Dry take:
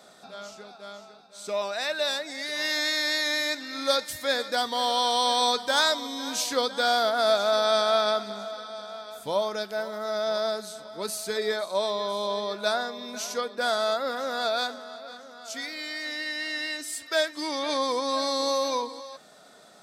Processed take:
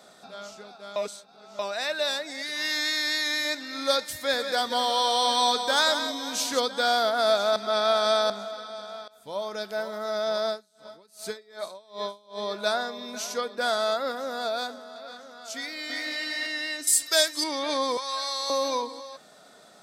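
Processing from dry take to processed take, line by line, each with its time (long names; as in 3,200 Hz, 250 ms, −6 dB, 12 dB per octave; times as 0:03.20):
0:00.96–0:01.59: reverse
0:02.42–0:03.45: parametric band 600 Hz −7.5 dB 1 octave
0:04.15–0:06.60: single-tap delay 179 ms −8.5 dB
0:07.56–0:08.30: reverse
0:09.08–0:09.74: fade in, from −21.5 dB
0:10.50–0:12.42: tremolo with a sine in dB 2.6 Hz, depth 30 dB
0:14.12–0:14.96: parametric band 2,500 Hz −5 dB 3 octaves
0:15.55–0:16.12: delay throw 340 ms, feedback 15%, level −1.5 dB
0:16.87–0:17.44: bass and treble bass −3 dB, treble +15 dB
0:17.97–0:18.50: high-pass filter 990 Hz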